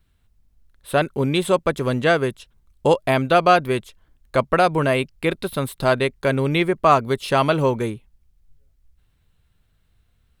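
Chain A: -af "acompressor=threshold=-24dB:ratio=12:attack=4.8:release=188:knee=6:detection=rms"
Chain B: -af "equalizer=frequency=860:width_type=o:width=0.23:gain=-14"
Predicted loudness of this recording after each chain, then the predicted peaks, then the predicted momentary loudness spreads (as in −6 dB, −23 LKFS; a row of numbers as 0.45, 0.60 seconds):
−31.5, −21.0 LKFS; −16.0, −4.5 dBFS; 6, 8 LU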